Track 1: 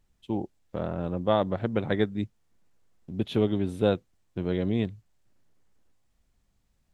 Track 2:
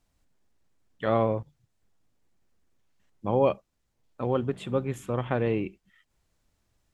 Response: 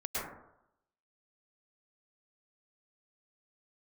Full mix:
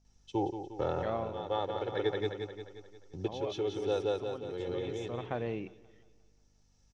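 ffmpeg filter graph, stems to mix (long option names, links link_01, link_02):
-filter_complex "[0:a]bandreject=frequency=2000:width=17,aecho=1:1:2.3:0.8,acrossover=split=230[link_01][link_02];[link_01]acompressor=threshold=-36dB:ratio=6[link_03];[link_03][link_02]amix=inputs=2:normalize=0,adelay=50,volume=-3dB,asplit=2[link_04][link_05];[link_05]volume=-9.5dB[link_06];[1:a]aeval=exprs='val(0)+0.00126*(sin(2*PI*50*n/s)+sin(2*PI*2*50*n/s)/2+sin(2*PI*3*50*n/s)/3+sin(2*PI*4*50*n/s)/4+sin(2*PI*5*50*n/s)/5)':channel_layout=same,volume=-1dB,afade=type=out:start_time=0.97:duration=0.37:silence=0.334965,afade=type=in:start_time=4.74:duration=0.61:silence=0.354813,asplit=3[link_07][link_08][link_09];[link_08]volume=-23dB[link_10];[link_09]apad=whole_len=308055[link_11];[link_04][link_11]sidechaincompress=threshold=-52dB:ratio=8:attack=16:release=939[link_12];[link_06][link_10]amix=inputs=2:normalize=0,aecho=0:1:177|354|531|708|885|1062|1239|1416:1|0.52|0.27|0.141|0.0731|0.038|0.0198|0.0103[link_13];[link_12][link_07][link_13]amix=inputs=3:normalize=0,lowpass=frequency=5800:width_type=q:width=6.7,equalizer=frequency=720:width=2.2:gain=5.5"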